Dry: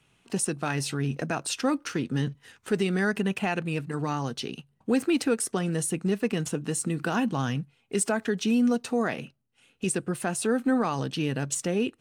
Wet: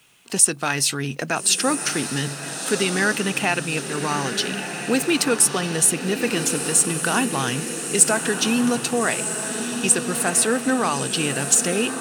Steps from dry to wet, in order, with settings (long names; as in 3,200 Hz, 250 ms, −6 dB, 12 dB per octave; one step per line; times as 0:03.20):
spectral tilt +2.5 dB per octave
bit-depth reduction 12 bits, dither triangular
on a send: feedback delay with all-pass diffusion 1,304 ms, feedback 60%, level −7.5 dB
on the sum: level +6.5 dB